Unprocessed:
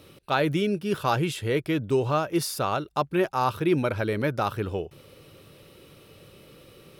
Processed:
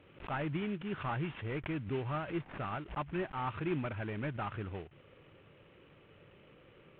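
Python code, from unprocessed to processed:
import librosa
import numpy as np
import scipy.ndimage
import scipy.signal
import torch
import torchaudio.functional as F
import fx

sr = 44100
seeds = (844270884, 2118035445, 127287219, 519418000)

y = fx.cvsd(x, sr, bps=16000)
y = fx.dynamic_eq(y, sr, hz=480.0, q=1.7, threshold_db=-40.0, ratio=4.0, max_db=-8)
y = fx.pre_swell(y, sr, db_per_s=140.0)
y = y * librosa.db_to_amplitude(-8.5)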